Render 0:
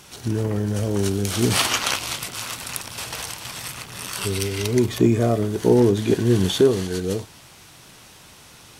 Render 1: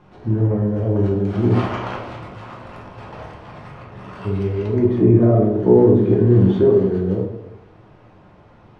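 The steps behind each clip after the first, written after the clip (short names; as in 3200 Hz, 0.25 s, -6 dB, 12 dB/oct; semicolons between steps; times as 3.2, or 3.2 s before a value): LPF 1100 Hz 12 dB/oct; reverb RT60 0.85 s, pre-delay 6 ms, DRR -2 dB; gain -1.5 dB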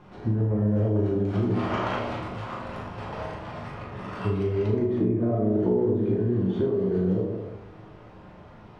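compressor 6:1, threshold -22 dBFS, peak gain reduction 14 dB; on a send: flutter echo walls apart 6.5 m, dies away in 0.34 s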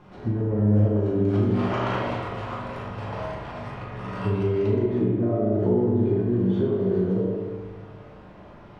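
spring tank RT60 1.4 s, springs 58 ms, chirp 40 ms, DRR 3 dB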